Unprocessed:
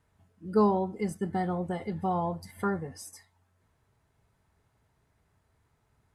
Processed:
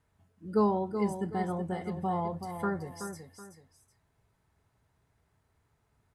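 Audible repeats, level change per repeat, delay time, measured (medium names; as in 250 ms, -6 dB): 2, -10.0 dB, 376 ms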